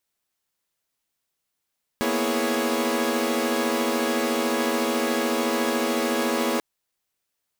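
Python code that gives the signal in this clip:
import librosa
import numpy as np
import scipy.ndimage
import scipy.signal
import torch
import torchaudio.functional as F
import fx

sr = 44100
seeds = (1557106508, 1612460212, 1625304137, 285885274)

y = fx.chord(sr, length_s=4.59, notes=(58, 59, 64, 68, 73), wave='saw', level_db=-26.0)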